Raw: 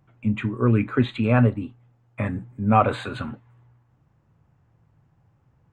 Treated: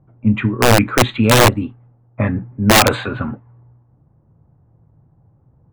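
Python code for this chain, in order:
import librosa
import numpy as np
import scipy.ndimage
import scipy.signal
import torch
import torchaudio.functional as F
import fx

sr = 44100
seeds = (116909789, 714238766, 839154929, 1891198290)

y = fx.env_lowpass(x, sr, base_hz=710.0, full_db=-15.0)
y = (np.mod(10.0 ** (12.0 / 20.0) * y + 1.0, 2.0) - 1.0) / 10.0 ** (12.0 / 20.0)
y = y * librosa.db_to_amplitude(8.5)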